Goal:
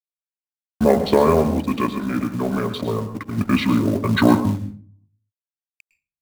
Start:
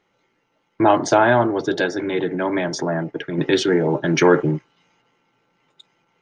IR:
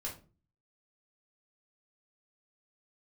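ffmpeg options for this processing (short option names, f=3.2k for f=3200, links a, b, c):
-filter_complex "[0:a]asetrate=29433,aresample=44100,atempo=1.49831,acrusher=bits=6:mode=log:mix=0:aa=0.000001,aeval=exprs='sgn(val(0))*max(abs(val(0))-0.0106,0)':c=same,asplit=2[a][b];[1:a]atrim=start_sample=2205,asetrate=38808,aresample=44100,adelay=106[c];[b][c]afir=irnorm=-1:irlink=0,volume=-11.5dB[d];[a][d]amix=inputs=2:normalize=0"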